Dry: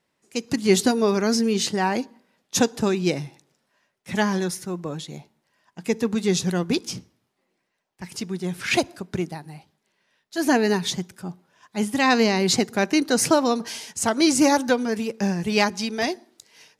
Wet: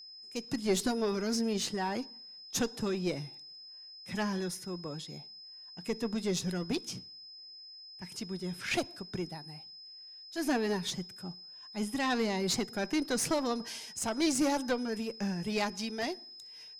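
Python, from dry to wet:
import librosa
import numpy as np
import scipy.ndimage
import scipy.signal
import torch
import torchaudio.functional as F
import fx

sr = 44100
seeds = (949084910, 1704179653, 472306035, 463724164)

y = fx.diode_clip(x, sr, knee_db=-16.0)
y = y + 10.0 ** (-39.0 / 20.0) * np.sin(2.0 * np.pi * 5100.0 * np.arange(len(y)) / sr)
y = y * librosa.db_to_amplitude(-8.5)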